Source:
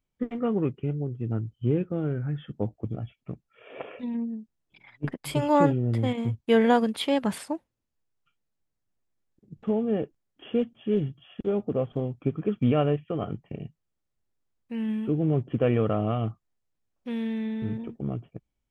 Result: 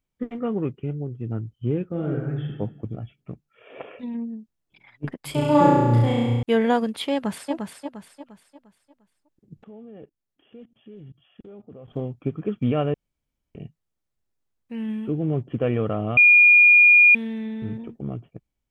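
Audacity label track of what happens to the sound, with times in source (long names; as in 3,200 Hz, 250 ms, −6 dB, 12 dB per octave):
1.880000	2.510000	thrown reverb, RT60 0.98 s, DRR −0.5 dB
5.310000	6.430000	flutter between parallel walls apart 5.8 metres, dies away in 1.4 s
7.130000	7.530000	delay throw 350 ms, feedback 40%, level −5 dB
9.640000	11.880000	output level in coarse steps of 21 dB
12.940000	13.550000	fill with room tone
16.170000	17.150000	beep over 2,430 Hz −9.5 dBFS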